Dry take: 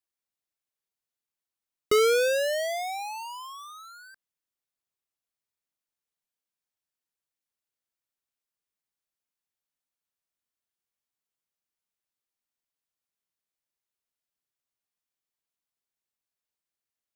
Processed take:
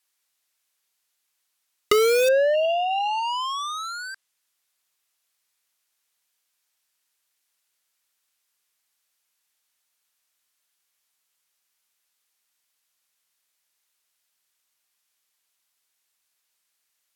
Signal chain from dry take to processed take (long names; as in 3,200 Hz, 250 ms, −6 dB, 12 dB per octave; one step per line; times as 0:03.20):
tilt shelving filter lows −8 dB, about 650 Hz
treble cut that deepens with the level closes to 870 Hz, closed at −24 dBFS
in parallel at −5.5 dB: wrap-around overflow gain 23 dB
on the sum: healed spectral selection 0:02.57–0:03.21, 1,200–3,200 Hz after
level +5.5 dB